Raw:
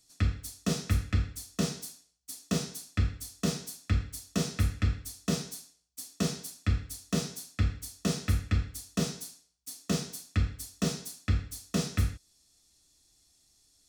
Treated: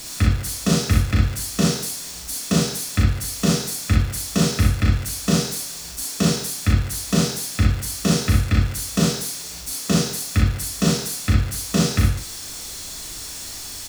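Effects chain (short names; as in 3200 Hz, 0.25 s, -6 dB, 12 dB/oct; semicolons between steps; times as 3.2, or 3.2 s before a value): zero-crossing step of -38.5 dBFS; early reflections 37 ms -4.5 dB, 60 ms -3.5 dB; gain +8 dB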